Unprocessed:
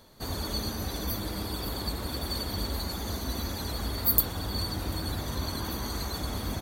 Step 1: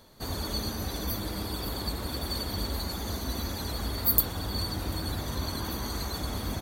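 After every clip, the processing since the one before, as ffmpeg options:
ffmpeg -i in.wav -af anull out.wav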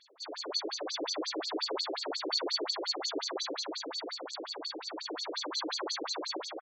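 ffmpeg -i in.wav -af "dynaudnorm=framelen=220:gausssize=7:maxgain=5.5dB,aecho=1:1:152:0.631,afftfilt=real='re*between(b*sr/1024,380*pow(5800/380,0.5+0.5*sin(2*PI*5.6*pts/sr))/1.41,380*pow(5800/380,0.5+0.5*sin(2*PI*5.6*pts/sr))*1.41)':imag='im*between(b*sr/1024,380*pow(5800/380,0.5+0.5*sin(2*PI*5.6*pts/sr))/1.41,380*pow(5800/380,0.5+0.5*sin(2*PI*5.6*pts/sr))*1.41)':win_size=1024:overlap=0.75,volume=2.5dB" out.wav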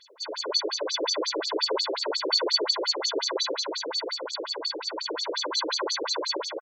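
ffmpeg -i in.wav -af "aecho=1:1:2:0.66,volume=5.5dB" out.wav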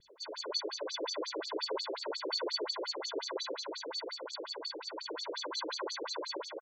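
ffmpeg -i in.wav -filter_complex "[0:a]acrossover=split=380[link_01][link_02];[link_01]acompressor=mode=upward:threshold=-44dB:ratio=2.5[link_03];[link_03][link_02]amix=inputs=2:normalize=0,adynamicequalizer=threshold=0.0126:dfrequency=5500:dqfactor=0.77:tfrequency=5500:tqfactor=0.77:attack=5:release=100:ratio=0.375:range=2.5:mode=cutabove:tftype=bell,volume=-8.5dB" out.wav

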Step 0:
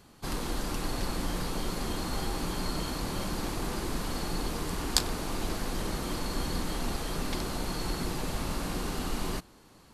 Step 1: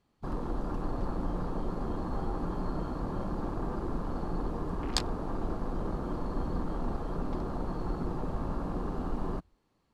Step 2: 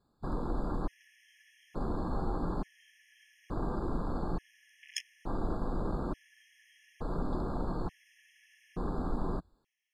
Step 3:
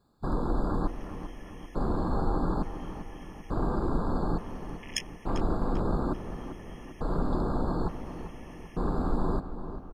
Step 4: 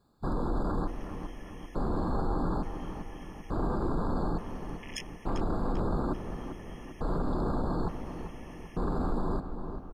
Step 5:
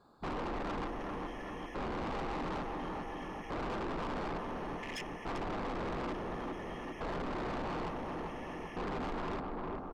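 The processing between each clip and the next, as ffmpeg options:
ffmpeg -i in.wav -af "afwtdn=0.0141,aemphasis=mode=reproduction:type=50kf,bandreject=frequency=1500:width=15" out.wav
ffmpeg -i in.wav -af "afftfilt=real='re*gt(sin(2*PI*0.57*pts/sr)*(1-2*mod(floor(b*sr/1024/1700),2)),0)':imag='im*gt(sin(2*PI*0.57*pts/sr)*(1-2*mod(floor(b*sr/1024/1700),2)),0)':win_size=1024:overlap=0.75" out.wav
ffmpeg -i in.wav -filter_complex "[0:a]asplit=2[link_01][link_02];[link_02]adelay=394,lowpass=frequency=2900:poles=1,volume=-10.5dB,asplit=2[link_03][link_04];[link_04]adelay=394,lowpass=frequency=2900:poles=1,volume=0.54,asplit=2[link_05][link_06];[link_06]adelay=394,lowpass=frequency=2900:poles=1,volume=0.54,asplit=2[link_07][link_08];[link_08]adelay=394,lowpass=frequency=2900:poles=1,volume=0.54,asplit=2[link_09][link_10];[link_10]adelay=394,lowpass=frequency=2900:poles=1,volume=0.54,asplit=2[link_11][link_12];[link_12]adelay=394,lowpass=frequency=2900:poles=1,volume=0.54[link_13];[link_01][link_03][link_05][link_07][link_09][link_11][link_13]amix=inputs=7:normalize=0,volume=5.5dB" out.wav
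ffmpeg -i in.wav -af "alimiter=limit=-22dB:level=0:latency=1:release=13" out.wav
ffmpeg -i in.wav -filter_complex "[0:a]asplit=2[link_01][link_02];[link_02]highpass=frequency=720:poles=1,volume=16dB,asoftclip=type=tanh:threshold=-21.5dB[link_03];[link_01][link_03]amix=inputs=2:normalize=0,lowpass=frequency=1500:poles=1,volume=-6dB,asoftclip=type=tanh:threshold=-36.5dB,volume=1dB" out.wav

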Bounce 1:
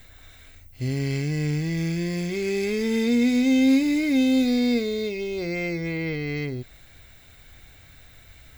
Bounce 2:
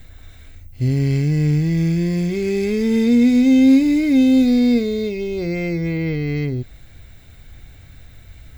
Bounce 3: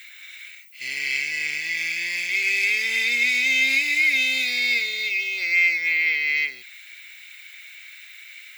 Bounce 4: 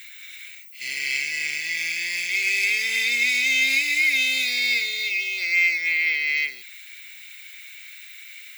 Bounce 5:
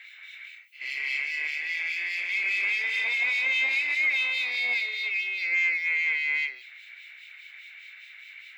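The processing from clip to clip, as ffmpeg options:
ffmpeg -i in.wav -af "lowshelf=frequency=370:gain=10.5" out.wav
ffmpeg -i in.wav -af "highpass=frequency=2300:width_type=q:width=3.9,volume=5dB" out.wav
ffmpeg -i in.wav -af "highshelf=frequency=4200:gain=8,volume=-2.5dB" out.wav
ffmpeg -i in.wav -filter_complex "[0:a]asplit=2[link_01][link_02];[link_02]highpass=frequency=720:poles=1,volume=12dB,asoftclip=type=tanh:threshold=-8.5dB[link_03];[link_01][link_03]amix=inputs=2:normalize=0,lowpass=frequency=5000:poles=1,volume=-6dB,acrossover=split=2300[link_04][link_05];[link_04]aeval=exprs='val(0)*(1-0.7/2+0.7/2*cos(2*PI*4.9*n/s))':channel_layout=same[link_06];[link_05]aeval=exprs='val(0)*(1-0.7/2-0.7/2*cos(2*PI*4.9*n/s))':channel_layout=same[link_07];[link_06][link_07]amix=inputs=2:normalize=0,acrossover=split=320 3500:gain=0.0708 1 0.126[link_08][link_09][link_10];[link_08][link_09][link_10]amix=inputs=3:normalize=0,volume=-3.5dB" out.wav

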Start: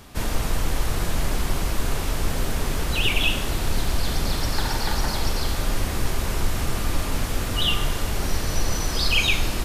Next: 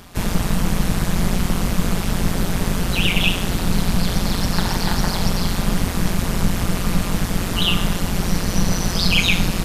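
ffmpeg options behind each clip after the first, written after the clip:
ffmpeg -i in.wav -af "tremolo=f=180:d=0.889,volume=7dB" out.wav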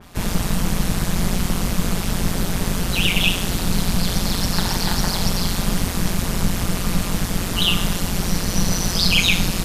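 ffmpeg -i in.wav -af "adynamicequalizer=threshold=0.0224:dfrequency=3100:dqfactor=0.7:tfrequency=3100:tqfactor=0.7:attack=5:release=100:ratio=0.375:range=2.5:mode=boostabove:tftype=highshelf,volume=-1.5dB" out.wav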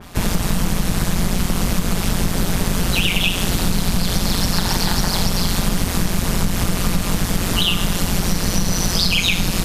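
ffmpeg -i in.wav -af "acompressor=threshold=-18dB:ratio=6,volume=5.5dB" out.wav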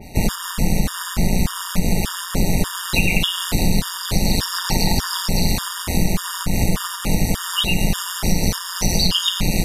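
ffmpeg -i in.wav -af "afftfilt=real='re*gt(sin(2*PI*1.7*pts/sr)*(1-2*mod(floor(b*sr/1024/940),2)),0)':imag='im*gt(sin(2*PI*1.7*pts/sr)*(1-2*mod(floor(b*sr/1024/940),2)),0)':win_size=1024:overlap=0.75,volume=2dB" out.wav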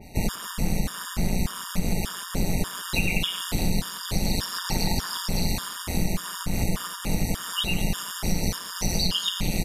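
ffmpeg -i in.wav -filter_complex "[0:a]asplit=2[link_01][link_02];[link_02]adelay=180,highpass=300,lowpass=3400,asoftclip=type=hard:threshold=-10dB,volume=-17dB[link_03];[link_01][link_03]amix=inputs=2:normalize=0,volume=-7dB" out.wav

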